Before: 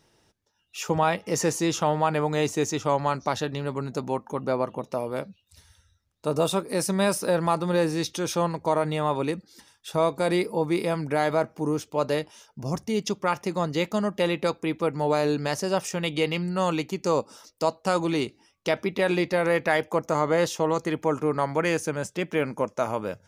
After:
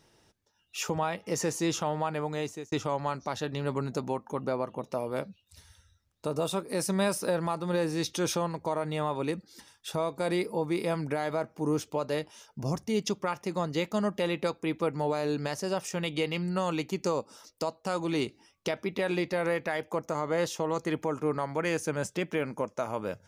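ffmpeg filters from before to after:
-filter_complex "[0:a]asplit=2[a][b];[a]atrim=end=2.72,asetpts=PTS-STARTPTS,afade=t=out:st=2.06:d=0.66[c];[b]atrim=start=2.72,asetpts=PTS-STARTPTS,afade=t=in:d=0.004:c=hsin[d];[c][d]concat=n=2:v=0:a=1,alimiter=limit=-18.5dB:level=0:latency=1:release=496"

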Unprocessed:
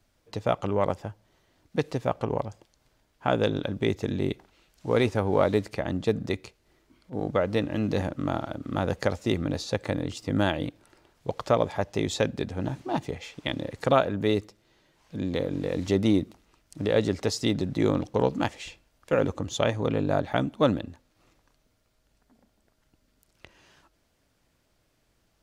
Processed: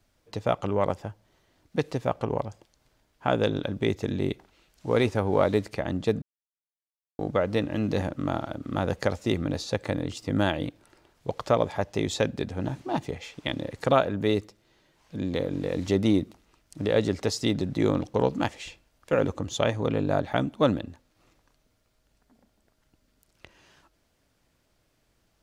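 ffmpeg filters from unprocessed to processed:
-filter_complex "[0:a]asplit=3[a][b][c];[a]atrim=end=6.22,asetpts=PTS-STARTPTS,afade=t=out:st=6.216:d=0.004:c=hsin[d];[b]atrim=start=6.22:end=7.19,asetpts=PTS-STARTPTS,volume=0[e];[c]atrim=start=7.19,asetpts=PTS-STARTPTS,afade=t=in:d=0.004:c=hsin[f];[d][e][f]concat=n=3:v=0:a=1"

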